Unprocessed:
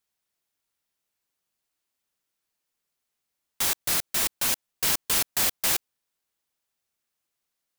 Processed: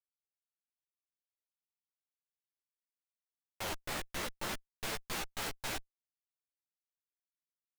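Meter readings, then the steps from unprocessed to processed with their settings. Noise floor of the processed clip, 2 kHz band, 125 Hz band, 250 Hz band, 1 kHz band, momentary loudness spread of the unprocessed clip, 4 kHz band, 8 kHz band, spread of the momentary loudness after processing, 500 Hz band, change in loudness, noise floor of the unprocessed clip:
under -85 dBFS, -9.0 dB, -5.5 dB, -5.5 dB, -6.5 dB, 4 LU, -13.0 dB, -18.0 dB, 3 LU, -5.0 dB, -16.0 dB, -83 dBFS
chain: Schmitt trigger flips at -21.5 dBFS; chorus voices 2, 0.85 Hz, delay 13 ms, depth 4.1 ms; trim -2.5 dB

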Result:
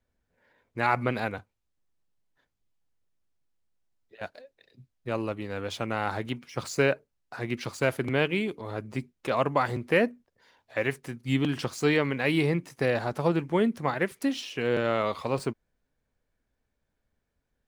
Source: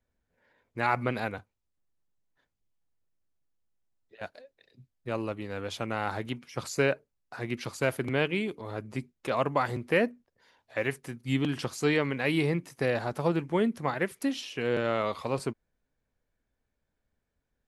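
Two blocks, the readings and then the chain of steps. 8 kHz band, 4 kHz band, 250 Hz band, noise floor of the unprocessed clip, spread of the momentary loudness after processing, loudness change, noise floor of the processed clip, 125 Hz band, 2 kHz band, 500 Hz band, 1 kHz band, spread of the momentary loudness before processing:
+0.5 dB, +2.0 dB, +2.0 dB, -82 dBFS, 12 LU, +2.0 dB, -80 dBFS, +2.0 dB, +2.0 dB, +2.0 dB, +2.0 dB, 12 LU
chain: median filter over 3 samples; trim +2 dB

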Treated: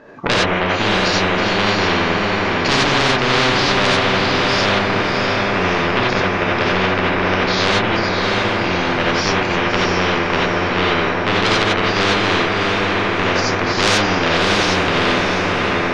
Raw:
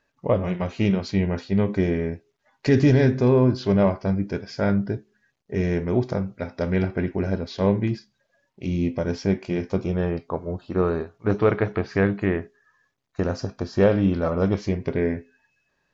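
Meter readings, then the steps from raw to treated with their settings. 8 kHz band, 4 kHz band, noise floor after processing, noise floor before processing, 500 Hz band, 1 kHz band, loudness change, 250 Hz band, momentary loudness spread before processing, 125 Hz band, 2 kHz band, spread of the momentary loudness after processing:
no reading, +24.5 dB, -19 dBFS, -73 dBFS, +5.0 dB, +17.5 dB, +7.5 dB, +2.5 dB, 11 LU, +0.5 dB, +19.0 dB, 3 LU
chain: band-pass filter 390 Hz, Q 0.78; saturation -24.5 dBFS, distortion -7 dB; on a send: echo that smears into a reverb 661 ms, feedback 46%, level -5 dB; on the sum: gated-style reverb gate 110 ms rising, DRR -5 dB; spectrum-flattening compressor 4:1; trim +8.5 dB

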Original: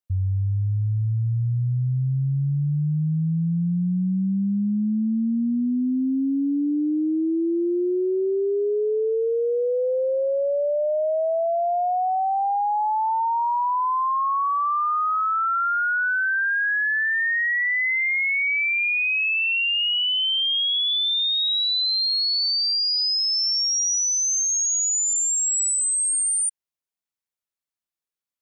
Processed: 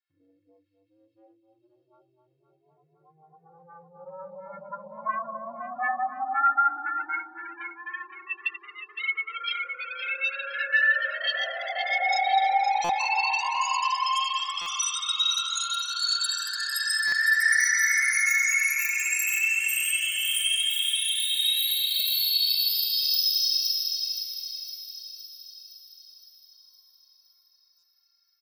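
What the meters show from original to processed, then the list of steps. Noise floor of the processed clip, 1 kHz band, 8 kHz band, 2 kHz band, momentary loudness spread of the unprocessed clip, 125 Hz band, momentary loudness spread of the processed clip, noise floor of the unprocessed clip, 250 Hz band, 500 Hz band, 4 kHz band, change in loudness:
-69 dBFS, -4.0 dB, -7.5 dB, -1.5 dB, 5 LU, under -35 dB, 16 LU, under -85 dBFS, under -30 dB, -19.0 dB, -3.0 dB, -2.5 dB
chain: resampled via 11.025 kHz; Schroeder reverb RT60 1.7 s, combs from 32 ms, DRR -8 dB; in parallel at -6.5 dB: sine folder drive 17 dB, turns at -1 dBFS; on the sum: time-frequency box 4.24–4.71 s, 620–2000 Hz -22 dB; bass shelf 320 Hz +7.5 dB; inharmonic resonator 160 Hz, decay 0.22 s, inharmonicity 0.03; compression, threshold -17 dBFS, peak gain reduction 13 dB; high-pass 84 Hz 24 dB/octave; echo whose repeats swap between lows and highs 257 ms, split 1.1 kHz, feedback 77%, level -6 dB; LFO high-pass sine 0.14 Hz 940–2800 Hz; buffer glitch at 12.84/14.61/17.07/27.78 s, samples 256, times 8; trim -6.5 dB

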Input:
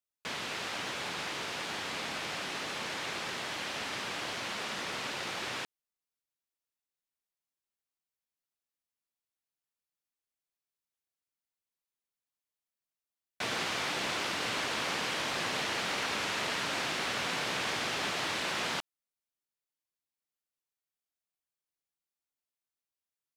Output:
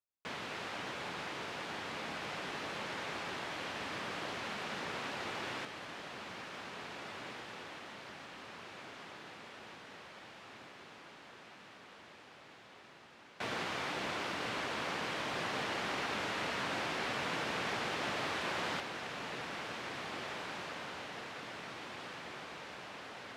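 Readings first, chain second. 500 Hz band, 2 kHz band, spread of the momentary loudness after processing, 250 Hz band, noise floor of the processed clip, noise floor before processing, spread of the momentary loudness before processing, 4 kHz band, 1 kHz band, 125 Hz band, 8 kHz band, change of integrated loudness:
-1.0 dB, -3.5 dB, 17 LU, -0.5 dB, -56 dBFS, under -85 dBFS, 4 LU, -6.0 dB, -1.5 dB, -0.5 dB, -9.0 dB, -6.0 dB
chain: treble shelf 3.2 kHz -10.5 dB; echo that smears into a reverb 1984 ms, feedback 66%, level -6 dB; trim -2 dB

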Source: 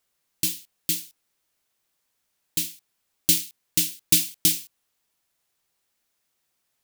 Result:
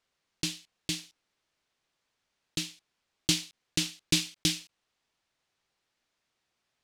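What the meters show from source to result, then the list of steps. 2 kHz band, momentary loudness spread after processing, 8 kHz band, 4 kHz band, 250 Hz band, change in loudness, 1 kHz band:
0.0 dB, 10 LU, -9.0 dB, -1.5 dB, 0.0 dB, -8.0 dB, no reading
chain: block-companded coder 5-bit; low-pass 5 kHz 12 dB/octave

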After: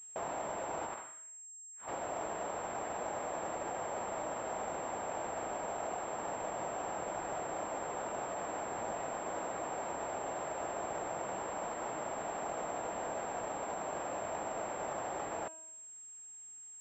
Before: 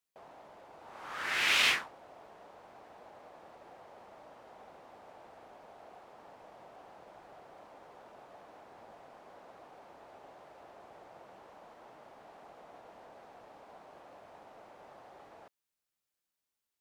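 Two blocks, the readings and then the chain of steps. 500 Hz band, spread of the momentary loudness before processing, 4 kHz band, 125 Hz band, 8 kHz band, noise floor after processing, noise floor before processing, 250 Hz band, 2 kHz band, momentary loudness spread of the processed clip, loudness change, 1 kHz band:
+13.5 dB, 19 LU, -16.5 dB, +11.0 dB, +7.0 dB, -51 dBFS, under -85 dBFS, +12.0 dB, -8.0 dB, 6 LU, -10.5 dB, +9.5 dB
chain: compressor with a negative ratio -53 dBFS, ratio -0.5; feedback comb 320 Hz, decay 0.84 s, mix 60%; class-D stage that switches slowly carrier 7.5 kHz; trim +16.5 dB

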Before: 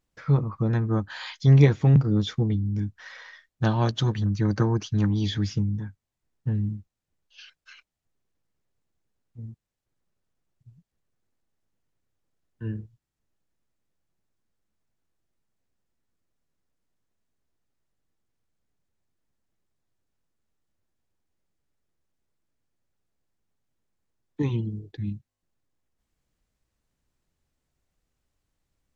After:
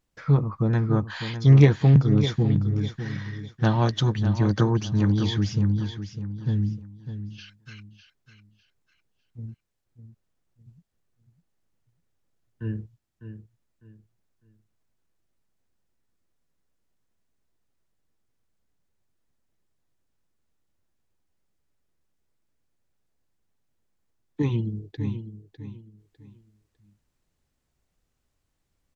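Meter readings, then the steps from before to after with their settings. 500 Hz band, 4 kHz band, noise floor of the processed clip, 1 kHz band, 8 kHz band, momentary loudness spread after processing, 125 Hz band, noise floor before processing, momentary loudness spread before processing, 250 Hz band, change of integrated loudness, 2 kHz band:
+1.5 dB, +1.5 dB, -76 dBFS, +2.0 dB, no reading, 20 LU, +2.0 dB, -85 dBFS, 20 LU, +2.0 dB, +1.5 dB, +2.0 dB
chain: feedback delay 602 ms, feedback 29%, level -10.5 dB; loudspeaker Doppler distortion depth 0.11 ms; trim +1.5 dB

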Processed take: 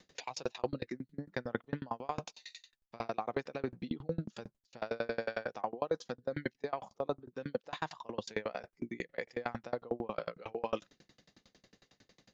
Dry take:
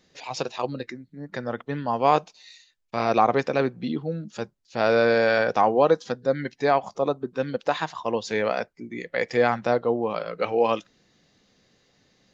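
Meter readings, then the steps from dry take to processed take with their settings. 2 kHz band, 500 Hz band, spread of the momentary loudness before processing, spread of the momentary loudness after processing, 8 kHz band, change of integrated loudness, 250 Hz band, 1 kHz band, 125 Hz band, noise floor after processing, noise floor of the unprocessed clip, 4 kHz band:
-15.0 dB, -15.5 dB, 13 LU, 7 LU, no reading, -15.5 dB, -12.5 dB, -17.0 dB, -11.0 dB, -82 dBFS, -66 dBFS, -12.5 dB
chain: reverse; compression 6:1, threshold -32 dBFS, peak gain reduction 17.5 dB; reverse; sawtooth tremolo in dB decaying 11 Hz, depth 32 dB; trim +5.5 dB

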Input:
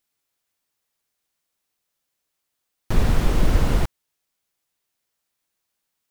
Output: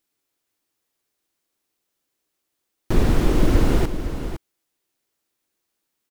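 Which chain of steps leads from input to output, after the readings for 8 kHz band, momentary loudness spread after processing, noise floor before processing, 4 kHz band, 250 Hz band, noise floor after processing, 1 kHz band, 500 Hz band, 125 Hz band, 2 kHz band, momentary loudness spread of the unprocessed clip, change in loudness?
+0.5 dB, 13 LU, -79 dBFS, +0.5 dB, +5.5 dB, -79 dBFS, +1.0 dB, +5.0 dB, +1.0 dB, +0.5 dB, 6 LU, +1.0 dB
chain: peaking EQ 330 Hz +9 dB 0.86 oct; on a send: delay 509 ms -10 dB

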